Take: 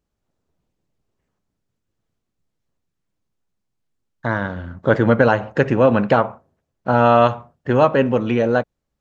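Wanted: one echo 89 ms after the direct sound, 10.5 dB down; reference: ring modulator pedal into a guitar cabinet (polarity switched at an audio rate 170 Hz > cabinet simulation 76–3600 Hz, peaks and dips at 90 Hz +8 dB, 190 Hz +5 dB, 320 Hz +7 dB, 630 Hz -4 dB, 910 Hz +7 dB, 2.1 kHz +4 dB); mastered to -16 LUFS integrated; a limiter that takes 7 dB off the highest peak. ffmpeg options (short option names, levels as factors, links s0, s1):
-af "alimiter=limit=0.376:level=0:latency=1,aecho=1:1:89:0.299,aeval=exprs='val(0)*sgn(sin(2*PI*170*n/s))':c=same,highpass=76,equalizer=f=90:t=q:w=4:g=8,equalizer=f=190:t=q:w=4:g=5,equalizer=f=320:t=q:w=4:g=7,equalizer=f=630:t=q:w=4:g=-4,equalizer=f=910:t=q:w=4:g=7,equalizer=f=2100:t=q:w=4:g=4,lowpass=f=3600:w=0.5412,lowpass=f=3600:w=1.3066,volume=1.41"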